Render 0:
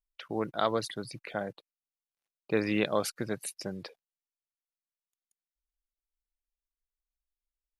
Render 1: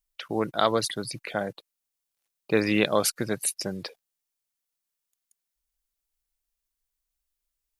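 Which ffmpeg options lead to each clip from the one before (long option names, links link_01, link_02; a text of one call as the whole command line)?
ffmpeg -i in.wav -af "highshelf=frequency=4600:gain=8,volume=5dB" out.wav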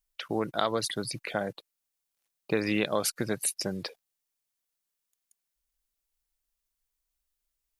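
ffmpeg -i in.wav -af "acompressor=threshold=-25dB:ratio=2.5" out.wav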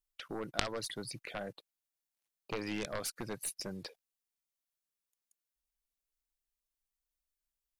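ffmpeg -i in.wav -af "aeval=exprs='0.398*(cos(1*acos(clip(val(0)/0.398,-1,1)))-cos(1*PI/2))+0.0355*(cos(2*acos(clip(val(0)/0.398,-1,1)))-cos(2*PI/2))+0.178*(cos(3*acos(clip(val(0)/0.398,-1,1)))-cos(3*PI/2))':channel_layout=same,volume=1.5dB" out.wav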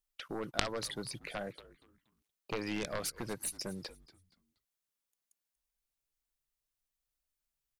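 ffmpeg -i in.wav -filter_complex "[0:a]asplit=4[link_01][link_02][link_03][link_04];[link_02]adelay=237,afreqshift=-140,volume=-18dB[link_05];[link_03]adelay=474,afreqshift=-280,volume=-27.9dB[link_06];[link_04]adelay=711,afreqshift=-420,volume=-37.8dB[link_07];[link_01][link_05][link_06][link_07]amix=inputs=4:normalize=0,volume=1dB" out.wav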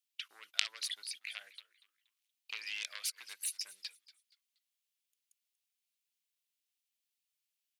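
ffmpeg -i in.wav -af "highpass=frequency=2700:width_type=q:width=1.7" out.wav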